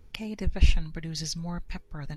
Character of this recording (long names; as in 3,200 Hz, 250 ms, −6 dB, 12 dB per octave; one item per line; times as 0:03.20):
background noise floor −52 dBFS
spectral slope −4.5 dB per octave